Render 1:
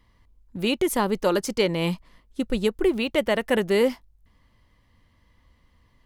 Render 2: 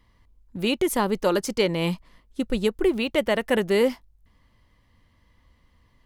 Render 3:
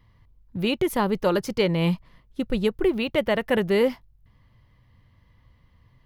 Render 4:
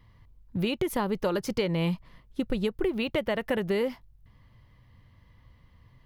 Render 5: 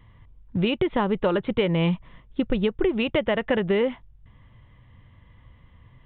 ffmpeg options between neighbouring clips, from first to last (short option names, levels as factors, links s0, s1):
-af anull
-af "equalizer=f=125:t=o:w=1:g=11,equalizer=f=250:t=o:w=1:g=-3,equalizer=f=8000:t=o:w=1:g=-10"
-af "acompressor=threshold=0.0562:ratio=6,volume=1.12"
-af "aresample=8000,aresample=44100,volume=1.78"